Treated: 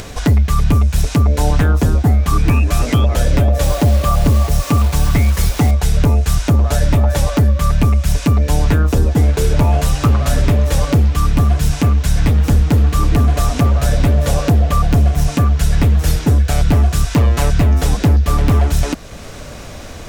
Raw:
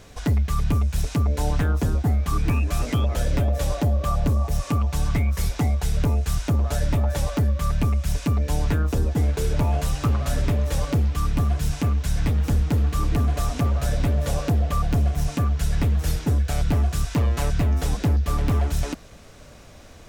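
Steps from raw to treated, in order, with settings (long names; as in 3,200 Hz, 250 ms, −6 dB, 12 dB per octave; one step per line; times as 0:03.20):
in parallel at −1.5 dB: downward compressor, threshold −33 dBFS, peak gain reduction 15 dB
0:03.63–0:05.71: on the sum: bit-depth reduction 6 bits, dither none
upward compression, threshold −33 dBFS
level +7.5 dB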